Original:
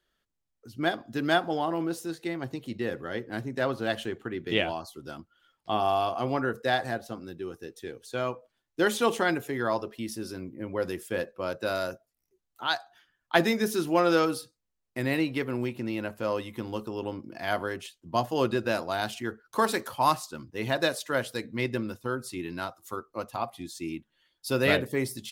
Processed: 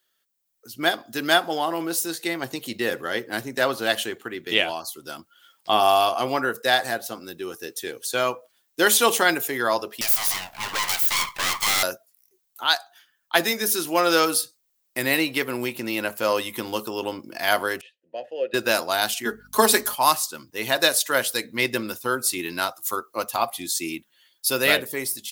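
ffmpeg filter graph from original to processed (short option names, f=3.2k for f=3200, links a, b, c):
-filter_complex "[0:a]asettb=1/sr,asplit=3[a][b][c];[a]atrim=end=10.014[d];[b]atrim=start=10.01:end=11.83,asetpts=PTS-STARTPTS,afade=t=in:d=0.004:c=qsin,afade=t=out:st=1.816:d=0.004:c=qsin,highpass=f=450:w=0.5412,highpass=f=450:w=1.3066,asplit=2[e][f];[f]highpass=f=720:p=1,volume=25dB,asoftclip=type=tanh:threshold=-19dB[g];[e][g]amix=inputs=2:normalize=0,lowpass=f=2.7k:p=1,volume=-6dB,aeval=exprs='abs(val(0))':c=same[h];[c]atrim=start=11.826[i];[d][h]acrossfade=d=0.004:c1=hsin:c2=qsin[j];[j][i]acrossfade=d=0.004:c1=qsin:c2=hsin,asettb=1/sr,asplit=3[k][l][m];[k]atrim=end=17.814[n];[l]atrim=start=17.81:end=18.54,asetpts=PTS-STARTPTS,afade=t=in:d=0.004:c=qsin,afade=t=out:st=0.726:d=0.004:c=qsin,asplit=3[o][p][q];[o]bandpass=f=530:t=q:w=8,volume=0dB[r];[p]bandpass=f=1.84k:t=q:w=8,volume=-6dB[s];[q]bandpass=f=2.48k:t=q:w=8,volume=-9dB[t];[r][s][t]amix=inputs=3:normalize=0,aemphasis=mode=reproduction:type=75fm[u];[m]atrim=start=18.536[v];[n][u]acrossfade=d=0.004:c1=hsin:c2=qsin[w];[w][v]acrossfade=d=0.004:c1=qsin:c2=hsin,asettb=1/sr,asplit=3[x][y][z];[x]atrim=end=19.254[aa];[y]atrim=start=19.25:end=19.95,asetpts=PTS-STARTPTS,afade=t=in:d=0.004:c=qsin,afade=t=out:st=0.696:d=0.004:c=qsin,lowshelf=f=180:t=q:w=3:g=-10.5,aecho=1:1:4.8:0.85,atrim=end_sample=30870,aeval=exprs='val(0)+0.00562*(sin(2*PI*50*n/s)+sin(2*PI*2*50*n/s)/2+sin(2*PI*3*50*n/s)/3+sin(2*PI*4*50*n/s)/4+sin(2*PI*5*50*n/s)/5)':c=same[ab];[z]atrim=start=19.946[ac];[aa][ab]acrossfade=d=0.004:c1=hsin:c2=qsin[ad];[ad][ac]acrossfade=d=0.004:c1=qsin:c2=hsin,aemphasis=mode=production:type=riaa,dynaudnorm=f=130:g=9:m=9dB,highshelf=f=7.8k:g=-5.5"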